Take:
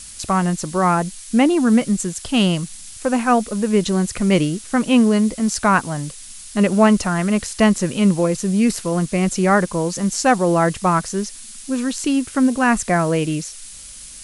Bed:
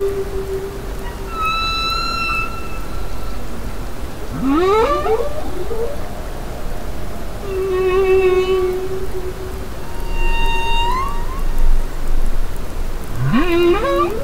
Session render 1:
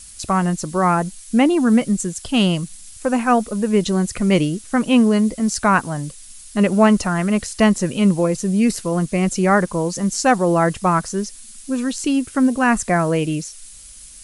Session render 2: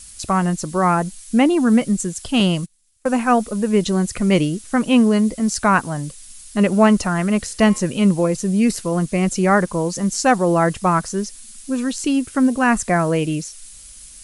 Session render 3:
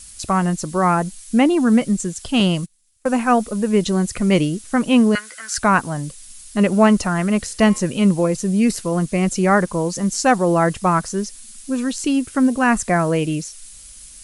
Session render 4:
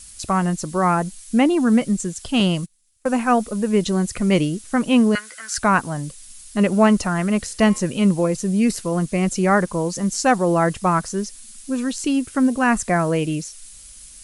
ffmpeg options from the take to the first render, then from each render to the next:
-af "afftdn=nr=6:nf=-38"
-filter_complex "[0:a]asettb=1/sr,asplit=3[a][b][c];[a]atrim=end=2.404[d];[b]atrim=start=2.4:end=3.09,asetpts=PTS-STARTPTS,afade=t=in:d=0.004:c=qsin,afade=t=out:st=0.686:d=0.004:c=qsin,agate=range=-24dB:threshold=-26dB:ratio=16:release=100:detection=peak[e];[c]atrim=start=3.086[f];[d][e]acrossfade=d=0.004:c1=hsin:c2=qsin[g];[g][f]acrossfade=d=0.004:c1=qsin:c2=hsin,asettb=1/sr,asplit=3[h][i][j];[h]atrim=end=7.404[k];[i]atrim=start=7.4:end=7.8,asetpts=PTS-STARTPTS,afade=t=in:d=0.004:c=qsin,afade=t=out:st=0.396:d=0.004:c=qsin,bandreject=f=118.9:t=h:w=4,bandreject=f=237.8:t=h:w=4,bandreject=f=356.7:t=h:w=4,bandreject=f=475.6:t=h:w=4,bandreject=f=594.5:t=h:w=4,bandreject=f=713.4:t=h:w=4,bandreject=f=832.3:t=h:w=4,bandreject=f=951.2:t=h:w=4,bandreject=f=1.0701k:t=h:w=4,bandreject=f=1.189k:t=h:w=4,bandreject=f=1.3079k:t=h:w=4,bandreject=f=1.4268k:t=h:w=4,bandreject=f=1.5457k:t=h:w=4,bandreject=f=1.6646k:t=h:w=4,bandreject=f=1.7835k:t=h:w=4,bandreject=f=1.9024k:t=h:w=4,bandreject=f=2.0213k:t=h:w=4,bandreject=f=2.1402k:t=h:w=4,bandreject=f=2.2591k:t=h:w=4,bandreject=f=2.378k:t=h:w=4,bandreject=f=2.4969k:t=h:w=4,bandreject=f=2.6158k:t=h:w=4,bandreject=f=2.7347k:t=h:w=4,bandreject=f=2.8536k:t=h:w=4,bandreject=f=2.9725k:t=h:w=4,bandreject=f=3.0914k:t=h:w=4,bandreject=f=3.2103k:t=h:w=4,bandreject=f=3.3292k:t=h:w=4,bandreject=f=3.4481k:t=h:w=4[l];[j]atrim=start=7.796[m];[k][l]acrossfade=d=0.004:c1=hsin:c2=qsin[n];[n][m]acrossfade=d=0.004:c1=qsin:c2=hsin"
-filter_complex "[0:a]asettb=1/sr,asplit=3[a][b][c];[a]atrim=end=1.414[d];[b]atrim=start=1.41:end=2.54,asetpts=PTS-STARTPTS,afade=t=in:d=0.004:c=qsin,afade=t=out:st=1.126:d=0.004:c=qsin,acrossover=split=9400[e][f];[f]acompressor=threshold=-43dB:ratio=4:attack=1:release=60[g];[e][g]amix=inputs=2:normalize=0[h];[c]atrim=start=2.536[i];[d][h]acrossfade=d=0.004:c1=hsin:c2=qsin[j];[j][i]acrossfade=d=0.004:c1=qsin:c2=hsin,asettb=1/sr,asplit=3[k][l][m];[k]atrim=end=5.154[n];[l]atrim=start=5.15:end=5.58,asetpts=PTS-STARTPTS,afade=t=in:d=0.004:c=qsin,afade=t=out:st=0.426:d=0.004:c=qsin,highpass=f=1.5k:t=q:w=9.4[o];[m]atrim=start=5.576[p];[n][o]acrossfade=d=0.004:c1=hsin:c2=qsin[q];[q][p]acrossfade=d=0.004:c1=qsin:c2=hsin"
-af "volume=-1.5dB"

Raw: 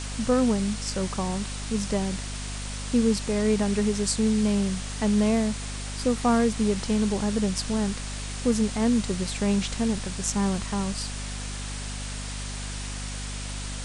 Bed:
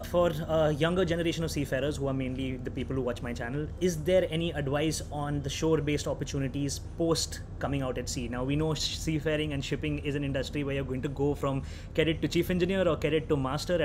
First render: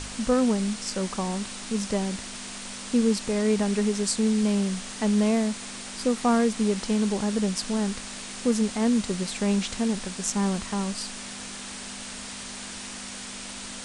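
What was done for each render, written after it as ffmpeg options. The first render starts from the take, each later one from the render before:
-af "bandreject=f=50:t=h:w=4,bandreject=f=100:t=h:w=4,bandreject=f=150:t=h:w=4"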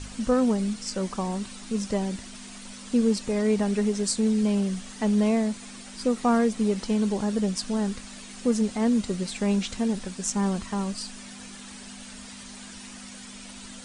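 -af "afftdn=nr=9:nf=-38"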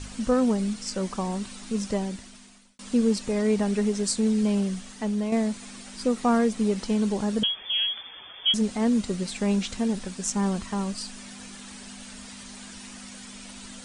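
-filter_complex "[0:a]asettb=1/sr,asplit=3[a][b][c];[a]atrim=end=7.434[d];[b]atrim=start=7.43:end=8.54,asetpts=PTS-STARTPTS,afade=t=in:d=0.004:c=qsin,afade=t=out:st=1.106:d=0.004:c=qsin,lowpass=f=3k:t=q:w=0.5098,lowpass=f=3k:t=q:w=0.6013,lowpass=f=3k:t=q:w=0.9,lowpass=f=3k:t=q:w=2.563,afreqshift=-3500[e];[c]atrim=start=8.536[f];[d][e]acrossfade=d=0.004:c1=hsin:c2=qsin[g];[g][f]acrossfade=d=0.004:c1=qsin:c2=hsin,asplit=3[h][i][j];[h]atrim=end=2.79,asetpts=PTS-STARTPTS,afade=t=out:st=1.91:d=0.88[k];[i]atrim=start=2.79:end=5.32,asetpts=PTS-STARTPTS,afade=t=in:d=0.004:c=hsin,afade=t=out:st=1.82:d=0.71:silence=0.446684[l];[j]atrim=start=5.32,asetpts=PTS-STARTPTS,afade=t=in:d=0.004:c=hsin:silence=0.446684[m];[k][l][m]concat=n=3:v=0:a=1"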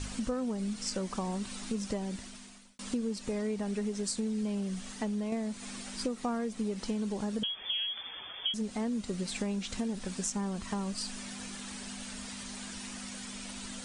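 -af "acompressor=threshold=-31dB:ratio=6"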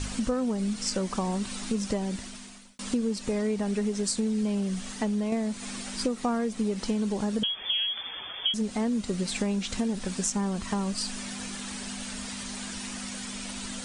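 -af "volume=5.5dB"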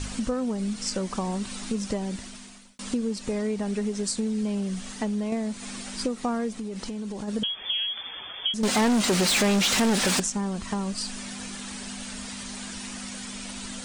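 -filter_complex "[0:a]asplit=3[a][b][c];[a]afade=t=out:st=6.56:d=0.02[d];[b]acompressor=threshold=-30dB:ratio=6:attack=3.2:release=140:knee=1:detection=peak,afade=t=in:st=6.56:d=0.02,afade=t=out:st=7.27:d=0.02[e];[c]afade=t=in:st=7.27:d=0.02[f];[d][e][f]amix=inputs=3:normalize=0,asettb=1/sr,asplit=3[g][h][i];[g]atrim=end=8.634[j];[h]atrim=start=8.63:end=10.2,asetpts=PTS-STARTPTS,afade=t=in:d=0.004:c=qsin,afade=t=out:st=1.566:d=0.004:c=qsin,asplit=2[k][l];[l]highpass=f=720:p=1,volume=30dB,asoftclip=type=tanh:threshold=-14.5dB[m];[k][m]amix=inputs=2:normalize=0,lowpass=f=7.2k:p=1,volume=-6dB[n];[i]atrim=start=10.196[o];[j][n]acrossfade=d=0.004:c1=hsin:c2=qsin[p];[p][o]acrossfade=d=0.004:c1=qsin:c2=hsin"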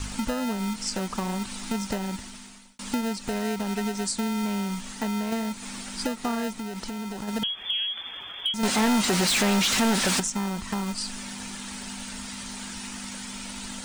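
-filter_complex "[0:a]acrossover=split=540[a][b];[a]acrusher=samples=39:mix=1:aa=0.000001[c];[b]asoftclip=type=hard:threshold=-19.5dB[d];[c][d]amix=inputs=2:normalize=0"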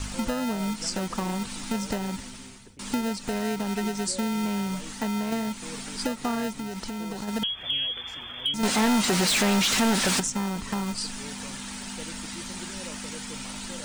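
-filter_complex "[1:a]volume=-17.5dB[a];[0:a][a]amix=inputs=2:normalize=0"

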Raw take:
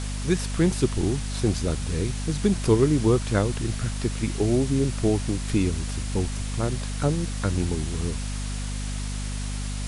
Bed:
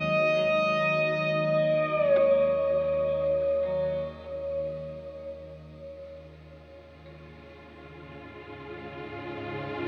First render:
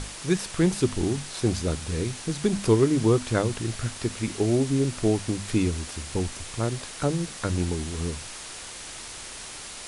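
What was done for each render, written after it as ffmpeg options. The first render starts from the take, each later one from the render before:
-af "bandreject=f=50:t=h:w=6,bandreject=f=100:t=h:w=6,bandreject=f=150:t=h:w=6,bandreject=f=200:t=h:w=6,bandreject=f=250:t=h:w=6"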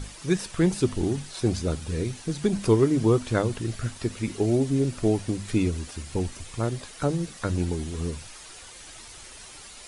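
-af "afftdn=nr=9:nf=-40"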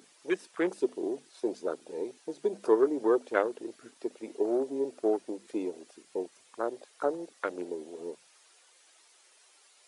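-af "afwtdn=0.02,highpass=f=380:w=0.5412,highpass=f=380:w=1.3066"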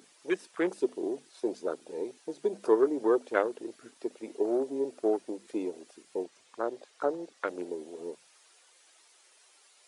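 -filter_complex "[0:a]asettb=1/sr,asplit=3[a][b][c];[a]atrim=end=6.244[d];[b]atrim=start=6.24:end=7.48,asetpts=PTS-STARTPTS,afade=t=in:d=0.004:c=qsin,afade=t=out:st=1.236:d=0.004:c=qsin,lowpass=7.6k[e];[c]atrim=start=7.476[f];[d][e]acrossfade=d=0.004:c1=hsin:c2=qsin[g];[g][f]acrossfade=d=0.004:c1=qsin:c2=hsin"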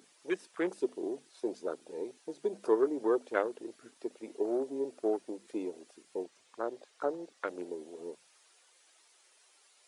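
-af "volume=-3.5dB"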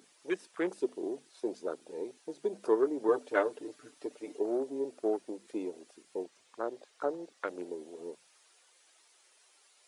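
-filter_complex "[0:a]asettb=1/sr,asplit=3[a][b][c];[a]atrim=end=3.084[d];[b]atrim=start=3.08:end=4.39,asetpts=PTS-STARTPTS,afade=t=in:d=0.004:c=qsin,afade=t=out:st=1.306:d=0.004:c=qsin,aecho=1:1:6.8:0.81,atrim=end_sample=57771[e];[c]atrim=start=4.386[f];[d][e]acrossfade=d=0.004:c1=hsin:c2=qsin[g];[g][f]acrossfade=d=0.004:c1=qsin:c2=hsin"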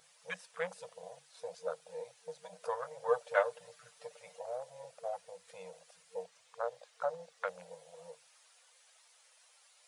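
-af "afftfilt=real='re*(1-between(b*sr/4096,190,460))':imag='im*(1-between(b*sr/4096,190,460))':win_size=4096:overlap=0.75,lowshelf=f=69:g=-6.5"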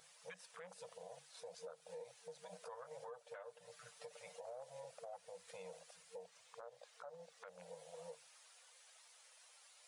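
-af "acompressor=threshold=-44dB:ratio=4,alimiter=level_in=18.5dB:limit=-24dB:level=0:latency=1:release=79,volume=-18.5dB"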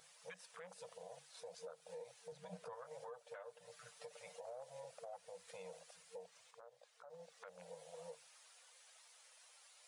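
-filter_complex "[0:a]asettb=1/sr,asplit=3[a][b][c];[a]atrim=end=2.324[d];[b]atrim=start=2.32:end=2.73,asetpts=PTS-STARTPTS,afade=t=in:d=0.004:c=qsin,afade=t=out:st=0.406:d=0.004:c=qsin,bass=f=250:g=13,treble=f=4k:g=-5[e];[c]atrim=start=2.726[f];[d][e]acrossfade=d=0.004:c1=hsin:c2=qsin[g];[g][f]acrossfade=d=0.004:c1=qsin:c2=hsin,asplit=3[h][i][j];[h]atrim=end=6.512[k];[i]atrim=start=6.508:end=7.102,asetpts=PTS-STARTPTS,volume=-6dB[l];[j]atrim=start=7.098[m];[k][l]acrossfade=d=0.004:c1=hsin:c2=hsin[n];[n][m]acrossfade=d=0.004:c1=hsin:c2=hsin"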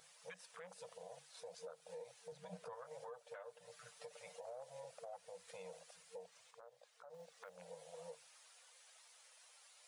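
-filter_complex "[0:a]asettb=1/sr,asplit=3[a][b][c];[a]atrim=end=7.144[d];[b]atrim=start=7.14:end=7.56,asetpts=PTS-STARTPTS,afade=t=in:d=0.004:c=qsin,afade=t=out:st=0.416:d=0.004:c=qsin,acrusher=bits=6:mode=log:mix=0:aa=0.000001[e];[c]atrim=start=7.556[f];[d][e]acrossfade=d=0.004:c1=hsin:c2=qsin[g];[g][f]acrossfade=d=0.004:c1=qsin:c2=hsin"

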